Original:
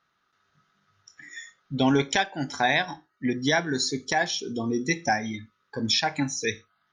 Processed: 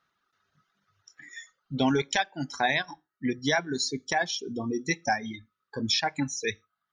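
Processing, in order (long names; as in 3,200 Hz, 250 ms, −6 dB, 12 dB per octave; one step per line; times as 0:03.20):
reverb reduction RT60 1.3 s
level −2 dB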